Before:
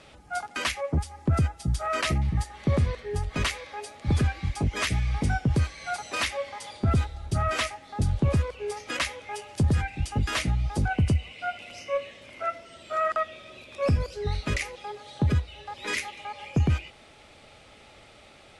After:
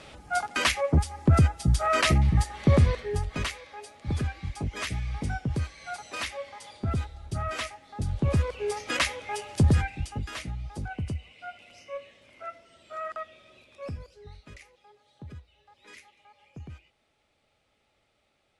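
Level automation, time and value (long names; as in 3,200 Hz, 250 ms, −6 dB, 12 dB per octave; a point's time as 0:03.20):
0:02.95 +4 dB
0:03.54 −5.5 dB
0:08.04 −5.5 dB
0:08.54 +2.5 dB
0:09.72 +2.5 dB
0:10.31 −9.5 dB
0:13.58 −9.5 dB
0:14.43 −20 dB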